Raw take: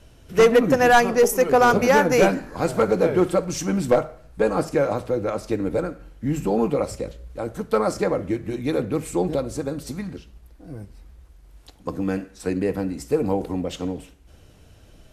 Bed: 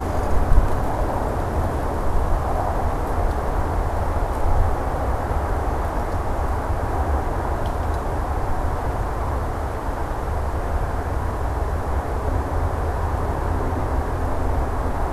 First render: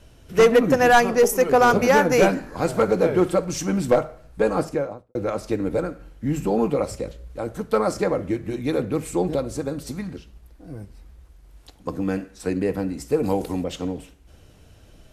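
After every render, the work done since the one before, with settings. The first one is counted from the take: 4.54–5.15 s: studio fade out; 13.23–13.64 s: treble shelf 3 kHz +11.5 dB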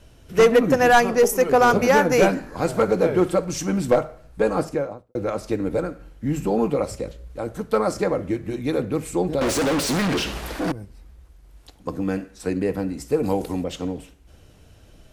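9.41–10.72 s: overdrive pedal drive 41 dB, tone 4.4 kHz, clips at -14.5 dBFS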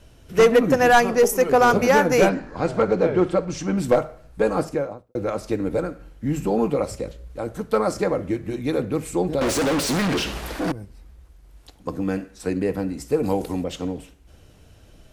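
2.29–3.78 s: distance through air 92 m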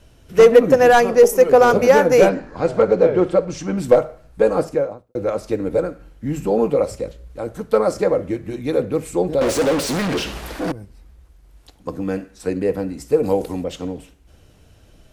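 dynamic bell 510 Hz, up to +7 dB, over -31 dBFS, Q 2.2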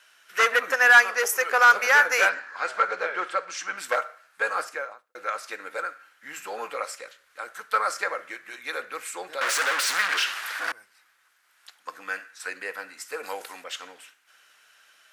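resonant high-pass 1.5 kHz, resonance Q 2.6; saturation -5 dBFS, distortion -23 dB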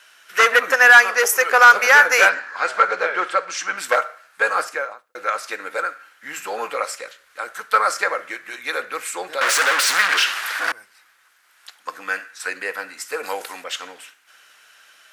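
trim +7 dB; peak limiter -2 dBFS, peak gain reduction 2.5 dB

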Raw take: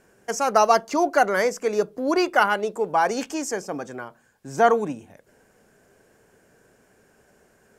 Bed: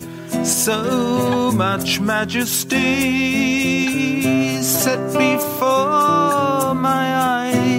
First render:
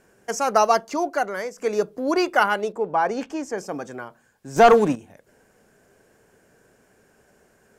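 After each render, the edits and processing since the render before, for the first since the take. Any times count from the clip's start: 0.58–1.58 s: fade out, to -11 dB; 2.72–3.58 s: low-pass 1.9 kHz 6 dB/octave; 4.56–4.96 s: waveshaping leveller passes 2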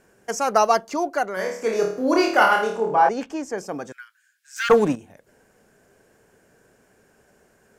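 1.34–3.09 s: flutter echo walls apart 4.6 m, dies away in 0.51 s; 3.92–4.70 s: elliptic high-pass 1.5 kHz, stop band 50 dB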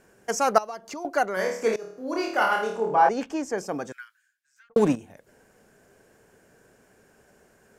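0.58–1.05 s: compression 5:1, threshold -34 dBFS; 1.76–3.35 s: fade in, from -20 dB; 3.94–4.76 s: studio fade out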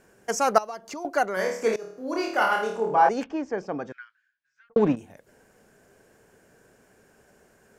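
3.24–4.97 s: distance through air 220 m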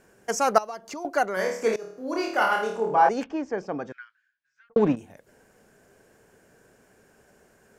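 no audible change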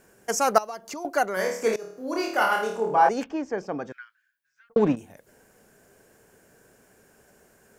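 treble shelf 9.2 kHz +10 dB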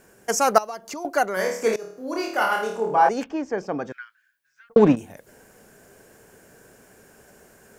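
gain riding 2 s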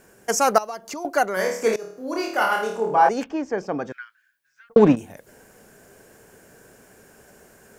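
trim +1 dB; peak limiter -3 dBFS, peak gain reduction 2.5 dB

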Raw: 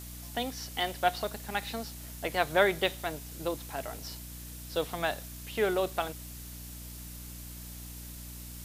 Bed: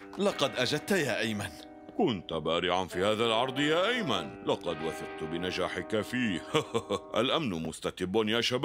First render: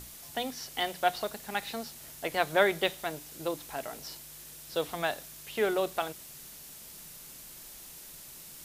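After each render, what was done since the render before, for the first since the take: hum notches 60/120/180/240/300 Hz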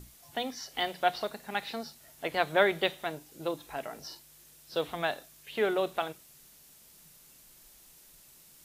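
noise print and reduce 9 dB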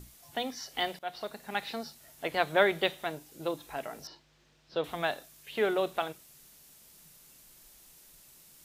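0.99–1.65 s: fade in equal-power, from -18.5 dB; 4.07–4.84 s: distance through air 180 m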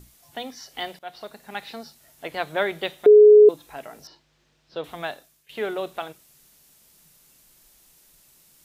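3.06–3.49 s: bleep 421 Hz -7 dBFS; 5.07–5.49 s: fade out, to -14 dB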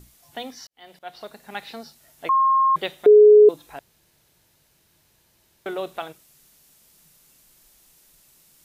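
0.67–1.07 s: fade in quadratic; 2.29–2.76 s: bleep 1.07 kHz -14.5 dBFS; 3.79–5.66 s: room tone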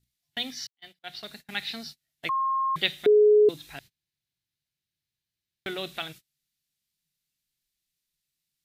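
gate -45 dBFS, range -29 dB; graphic EQ 125/500/1000/2000/4000 Hz +6/-8/-9/+5/+8 dB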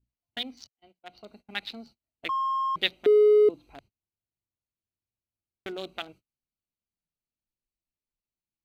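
local Wiener filter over 25 samples; peaking EQ 150 Hz -15 dB 0.36 oct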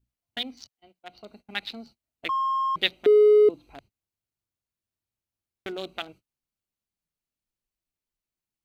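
trim +2 dB

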